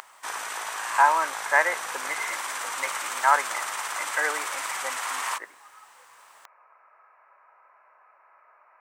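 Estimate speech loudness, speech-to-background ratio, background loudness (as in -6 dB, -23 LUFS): -26.5 LUFS, 4.5 dB, -31.0 LUFS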